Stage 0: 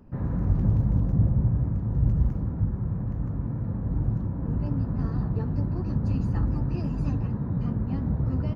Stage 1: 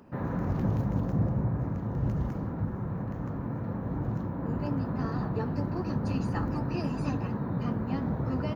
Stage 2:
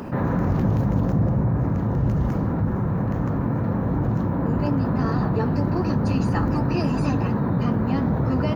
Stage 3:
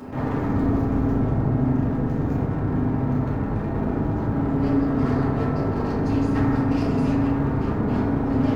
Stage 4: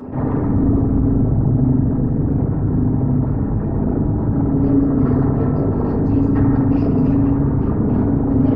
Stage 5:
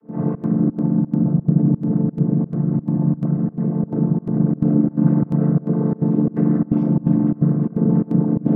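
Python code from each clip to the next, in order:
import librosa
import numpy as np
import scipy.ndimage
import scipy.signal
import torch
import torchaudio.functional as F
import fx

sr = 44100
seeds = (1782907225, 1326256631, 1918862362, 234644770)

y1 = fx.highpass(x, sr, hz=530.0, slope=6)
y1 = F.gain(torch.from_numpy(y1), 7.5).numpy()
y2 = fx.env_flatten(y1, sr, amount_pct=50)
y2 = F.gain(torch.from_numpy(y2), 5.0).numpy()
y3 = np.minimum(y2, 2.0 * 10.0 ** (-23.0 / 20.0) - y2)
y3 = fx.rev_fdn(y3, sr, rt60_s=2.0, lf_ratio=1.3, hf_ratio=0.25, size_ms=22.0, drr_db=-7.0)
y3 = F.gain(torch.from_numpy(y3), -9.0).numpy()
y4 = fx.envelope_sharpen(y3, sr, power=1.5)
y4 = F.gain(torch.from_numpy(y4), 6.0).numpy()
y5 = fx.chord_vocoder(y4, sr, chord='minor triad', root=50)
y5 = fx.volume_shaper(y5, sr, bpm=86, per_beat=2, depth_db=-23, release_ms=85.0, shape='slow start')
y5 = F.gain(torch.from_numpy(y5), 1.0).numpy()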